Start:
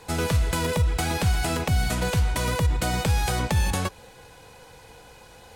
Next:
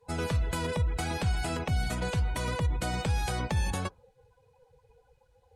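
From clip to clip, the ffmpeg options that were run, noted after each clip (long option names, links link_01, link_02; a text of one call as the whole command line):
ffmpeg -i in.wav -af "afftdn=noise_reduction=22:noise_floor=-38,volume=-6dB" out.wav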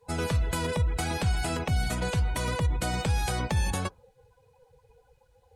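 ffmpeg -i in.wav -af "highshelf=frequency=7500:gain=4,volume=2dB" out.wav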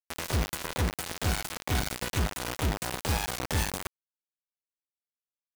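ffmpeg -i in.wav -af "acrusher=bits=3:mix=0:aa=0.000001,volume=-4.5dB" out.wav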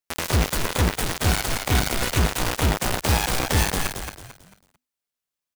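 ffmpeg -i in.wav -filter_complex "[0:a]asplit=5[link_01][link_02][link_03][link_04][link_05];[link_02]adelay=222,afreqshift=-63,volume=-6dB[link_06];[link_03]adelay=444,afreqshift=-126,volume=-15.6dB[link_07];[link_04]adelay=666,afreqshift=-189,volume=-25.3dB[link_08];[link_05]adelay=888,afreqshift=-252,volume=-34.9dB[link_09];[link_01][link_06][link_07][link_08][link_09]amix=inputs=5:normalize=0,volume=7.5dB" out.wav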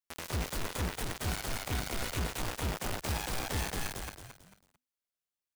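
ffmpeg -i in.wav -af "asoftclip=type=tanh:threshold=-20dB,volume=-7.5dB" out.wav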